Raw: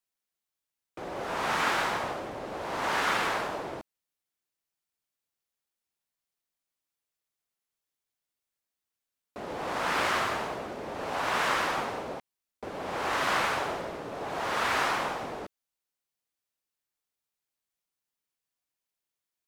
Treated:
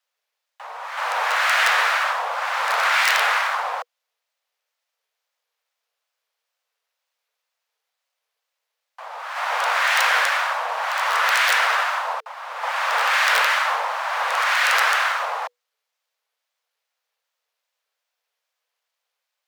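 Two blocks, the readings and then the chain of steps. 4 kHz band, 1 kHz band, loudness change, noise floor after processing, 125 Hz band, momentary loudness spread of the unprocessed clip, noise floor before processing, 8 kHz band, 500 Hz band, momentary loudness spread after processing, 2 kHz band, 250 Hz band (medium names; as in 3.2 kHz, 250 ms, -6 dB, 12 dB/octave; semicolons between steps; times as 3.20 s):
+11.5 dB, +9.5 dB, +10.5 dB, -82 dBFS, under -40 dB, 14 LU, under -85 dBFS, +10.5 dB, +2.5 dB, 14 LU, +13.0 dB, under -40 dB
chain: median filter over 5 samples; in parallel at -0.5 dB: peak limiter -24.5 dBFS, peak gain reduction 8.5 dB; on the sum: integer overflow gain 14.5 dB; reverse echo 371 ms -9 dB; frequency shift +450 Hz; wow and flutter 140 cents; trim +5.5 dB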